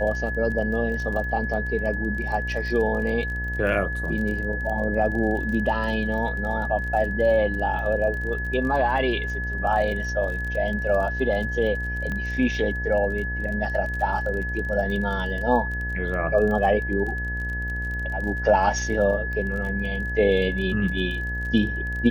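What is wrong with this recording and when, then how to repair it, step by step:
mains buzz 60 Hz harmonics 18 −30 dBFS
surface crackle 26 per second −31 dBFS
whistle 1,700 Hz −29 dBFS
0:12.12: click −19 dBFS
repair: click removal
hum removal 60 Hz, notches 18
notch filter 1,700 Hz, Q 30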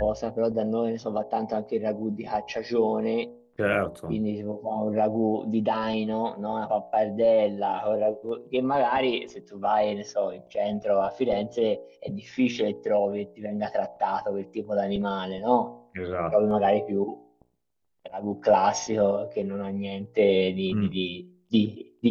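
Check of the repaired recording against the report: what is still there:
none of them is left

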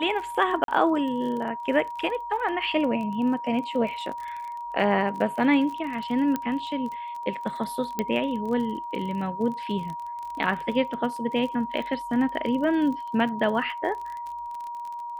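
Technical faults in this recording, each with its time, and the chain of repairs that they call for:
surface crackle 33 per second −33 dBFS
whistle 950 Hz −32 dBFS
0:00.64–0:00.68: drop-out 42 ms
0:06.36: click −14 dBFS
0:07.99: click −12 dBFS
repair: click removal
notch filter 950 Hz, Q 30
repair the gap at 0:00.64, 42 ms

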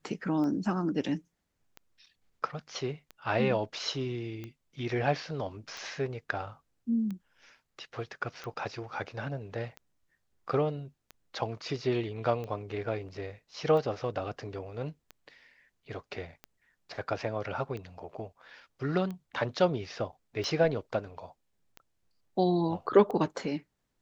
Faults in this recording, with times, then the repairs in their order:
scratch tick 45 rpm −27 dBFS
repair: click removal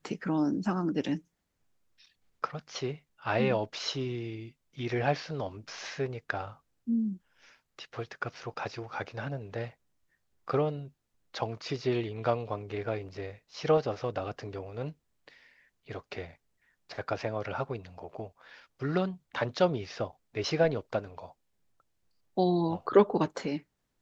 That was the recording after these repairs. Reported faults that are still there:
none of them is left

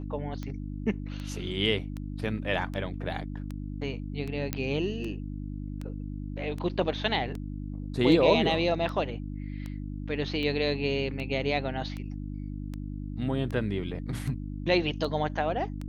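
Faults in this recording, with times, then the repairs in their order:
mains hum 50 Hz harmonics 6 −36 dBFS
scratch tick 78 rpm −24 dBFS
0:04.53: click −13 dBFS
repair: click removal
hum removal 50 Hz, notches 6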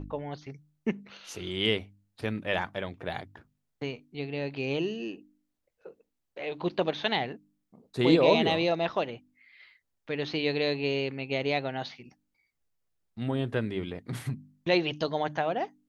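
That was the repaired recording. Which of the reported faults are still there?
none of them is left

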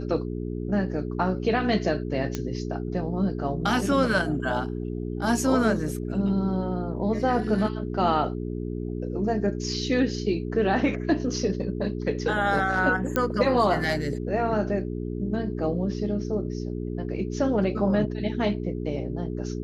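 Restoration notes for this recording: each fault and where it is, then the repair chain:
mains hum 60 Hz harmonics 7 −31 dBFS
0:02.35: click −14 dBFS
0:13.16: click −10 dBFS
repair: click removal
hum removal 60 Hz, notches 7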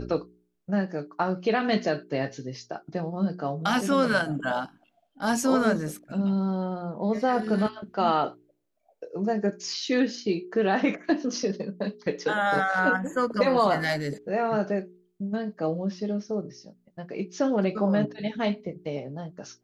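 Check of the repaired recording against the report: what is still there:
0:02.35: click

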